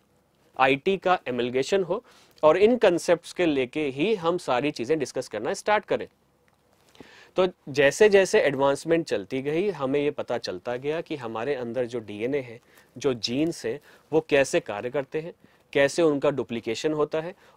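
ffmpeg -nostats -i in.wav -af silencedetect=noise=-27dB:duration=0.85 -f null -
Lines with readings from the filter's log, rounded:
silence_start: 6.03
silence_end: 7.38 | silence_duration: 1.35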